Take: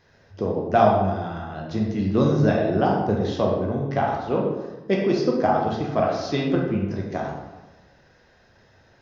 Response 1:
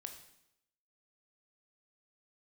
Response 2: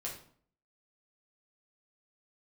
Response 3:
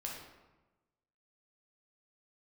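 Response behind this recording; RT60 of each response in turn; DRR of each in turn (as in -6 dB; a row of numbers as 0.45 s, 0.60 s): 3; 0.80 s, 0.55 s, 1.1 s; 4.5 dB, -4.0 dB, -2.5 dB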